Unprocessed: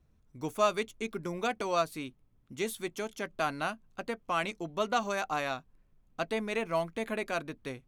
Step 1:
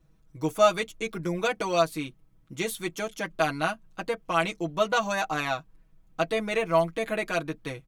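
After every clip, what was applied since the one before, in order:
comb filter 6.2 ms, depth 90%
level +3 dB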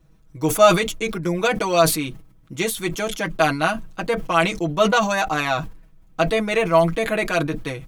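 level that may fall only so fast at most 90 dB per second
level +6.5 dB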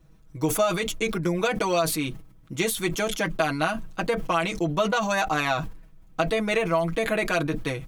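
downward compressor 6 to 1, threshold −20 dBFS, peak gain reduction 12 dB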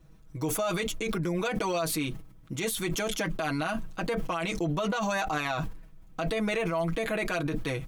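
brickwall limiter −21 dBFS, peak gain reduction 11 dB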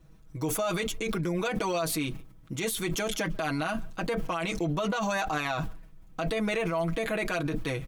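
far-end echo of a speakerphone 140 ms, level −23 dB

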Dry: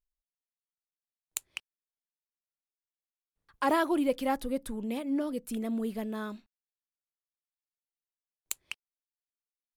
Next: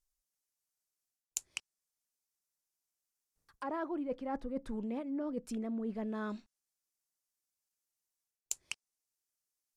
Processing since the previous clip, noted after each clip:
treble cut that deepens with the level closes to 1,700 Hz, closed at −29.5 dBFS
high shelf with overshoot 4,500 Hz +7.5 dB, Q 1.5
reversed playback
downward compressor 12 to 1, threshold −35 dBFS, peak gain reduction 15.5 dB
reversed playback
level +1 dB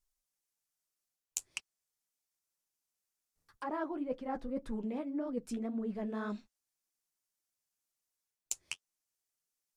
flanger 1.9 Hz, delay 4.5 ms, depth 8.9 ms, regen −32%
level +4 dB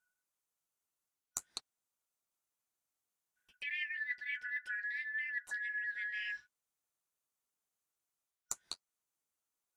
band-splitting scrambler in four parts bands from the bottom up 4123
level −2.5 dB

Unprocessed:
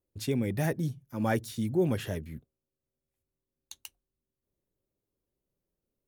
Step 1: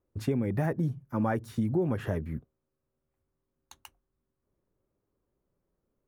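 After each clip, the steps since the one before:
drawn EQ curve 590 Hz 0 dB, 1,200 Hz +4 dB, 3,600 Hz −14 dB
downward compressor 6 to 1, threshold −31 dBFS, peak gain reduction 9.5 dB
level +6.5 dB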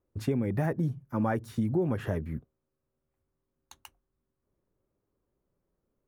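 no processing that can be heard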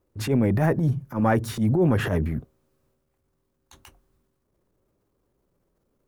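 transient designer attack −11 dB, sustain +6 dB
level +8.5 dB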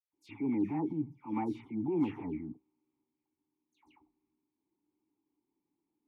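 formant filter u
all-pass dispersion lows, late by 133 ms, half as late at 2,400 Hz

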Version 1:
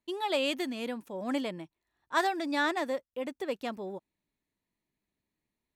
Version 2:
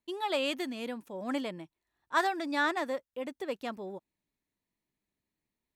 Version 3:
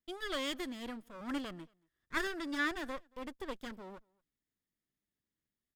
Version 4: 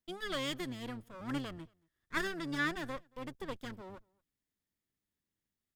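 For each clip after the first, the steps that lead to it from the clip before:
dynamic equaliser 1,300 Hz, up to +4 dB, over −41 dBFS, Q 1.5; level −2 dB
lower of the sound and its delayed copy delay 0.6 ms; slap from a distant wall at 39 metres, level −29 dB; level −4 dB
sub-octave generator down 1 octave, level −5 dB

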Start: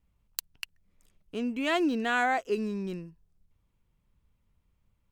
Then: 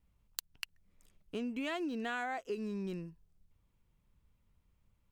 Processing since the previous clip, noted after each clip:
downward compressor 6 to 1, threshold −34 dBFS, peak gain reduction 11 dB
level −1 dB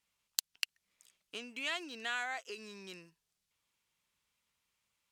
resonant band-pass 5,500 Hz, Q 0.55
level +8.5 dB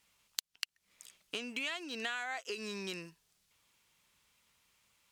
downward compressor 5 to 1, threshold −46 dBFS, peak gain reduction 18 dB
level +10 dB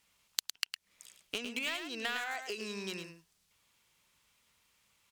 in parallel at −6 dB: centre clipping without the shift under −29 dBFS
on the sum: single-tap delay 108 ms −8 dB

